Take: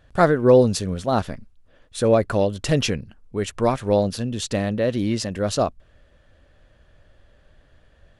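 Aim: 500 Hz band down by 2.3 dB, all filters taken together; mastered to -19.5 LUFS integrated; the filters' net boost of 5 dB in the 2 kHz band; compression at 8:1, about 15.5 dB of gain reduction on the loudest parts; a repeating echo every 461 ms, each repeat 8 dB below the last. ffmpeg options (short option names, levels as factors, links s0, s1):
-af "equalizer=f=500:t=o:g=-3,equalizer=f=2000:t=o:g=7,acompressor=threshold=0.0447:ratio=8,aecho=1:1:461|922|1383|1844|2305:0.398|0.159|0.0637|0.0255|0.0102,volume=4.22"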